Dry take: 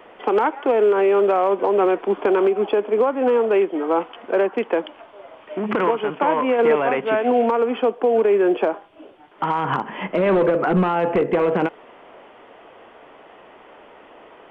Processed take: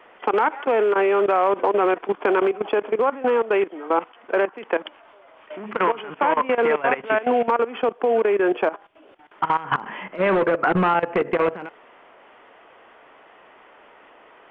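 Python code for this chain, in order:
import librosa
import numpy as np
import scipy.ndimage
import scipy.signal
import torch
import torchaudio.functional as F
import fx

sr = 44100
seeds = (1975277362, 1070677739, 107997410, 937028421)

y = fx.peak_eq(x, sr, hz=1700.0, db=8.0, octaves=2.2)
y = fx.level_steps(y, sr, step_db=16)
y = F.gain(torch.from_numpy(y), -2.0).numpy()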